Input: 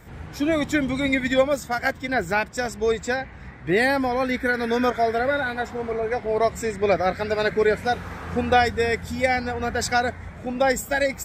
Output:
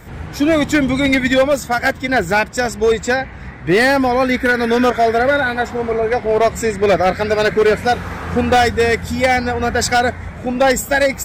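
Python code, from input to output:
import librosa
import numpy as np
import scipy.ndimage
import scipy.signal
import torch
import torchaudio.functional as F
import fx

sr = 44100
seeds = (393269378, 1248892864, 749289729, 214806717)

y = np.clip(10.0 ** (16.5 / 20.0) * x, -1.0, 1.0) / 10.0 ** (16.5 / 20.0)
y = y * librosa.db_to_amplitude(8.5)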